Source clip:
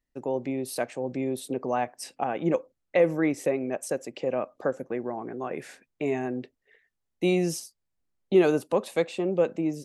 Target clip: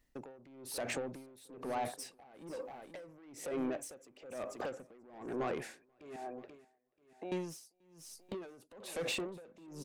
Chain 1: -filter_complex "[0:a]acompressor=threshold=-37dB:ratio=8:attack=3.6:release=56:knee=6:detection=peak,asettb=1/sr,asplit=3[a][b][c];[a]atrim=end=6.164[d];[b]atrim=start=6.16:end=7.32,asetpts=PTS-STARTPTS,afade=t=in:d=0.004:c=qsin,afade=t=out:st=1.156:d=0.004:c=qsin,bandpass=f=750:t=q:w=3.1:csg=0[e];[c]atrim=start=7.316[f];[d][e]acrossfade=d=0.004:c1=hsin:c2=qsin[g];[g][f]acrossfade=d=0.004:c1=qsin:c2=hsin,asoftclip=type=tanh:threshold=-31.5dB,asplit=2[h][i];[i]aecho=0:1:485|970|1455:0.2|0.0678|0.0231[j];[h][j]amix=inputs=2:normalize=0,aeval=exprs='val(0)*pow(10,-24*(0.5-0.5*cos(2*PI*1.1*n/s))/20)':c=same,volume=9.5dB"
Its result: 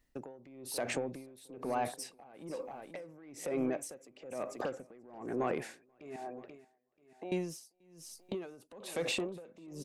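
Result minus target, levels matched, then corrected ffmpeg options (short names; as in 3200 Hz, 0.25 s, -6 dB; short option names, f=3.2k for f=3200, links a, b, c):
soft clip: distortion -9 dB
-filter_complex "[0:a]acompressor=threshold=-37dB:ratio=8:attack=3.6:release=56:knee=6:detection=peak,asettb=1/sr,asplit=3[a][b][c];[a]atrim=end=6.164[d];[b]atrim=start=6.16:end=7.32,asetpts=PTS-STARTPTS,afade=t=in:d=0.004:c=qsin,afade=t=out:st=1.156:d=0.004:c=qsin,bandpass=f=750:t=q:w=3.1:csg=0[e];[c]atrim=start=7.316[f];[d][e]acrossfade=d=0.004:c1=hsin:c2=qsin[g];[g][f]acrossfade=d=0.004:c1=qsin:c2=hsin,asoftclip=type=tanh:threshold=-39.5dB,asplit=2[h][i];[i]aecho=0:1:485|970|1455:0.2|0.0678|0.0231[j];[h][j]amix=inputs=2:normalize=0,aeval=exprs='val(0)*pow(10,-24*(0.5-0.5*cos(2*PI*1.1*n/s))/20)':c=same,volume=9.5dB"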